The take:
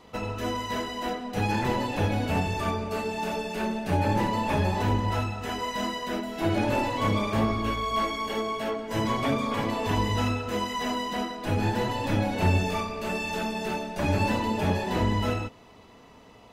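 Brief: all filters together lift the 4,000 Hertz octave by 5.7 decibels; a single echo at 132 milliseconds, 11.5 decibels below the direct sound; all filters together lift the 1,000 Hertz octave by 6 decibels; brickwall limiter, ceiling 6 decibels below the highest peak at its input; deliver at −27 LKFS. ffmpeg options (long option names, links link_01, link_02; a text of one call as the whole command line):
ffmpeg -i in.wav -af "equalizer=frequency=1000:width_type=o:gain=6.5,equalizer=frequency=4000:width_type=o:gain=7,alimiter=limit=-15.5dB:level=0:latency=1,aecho=1:1:132:0.266,volume=-1.5dB" out.wav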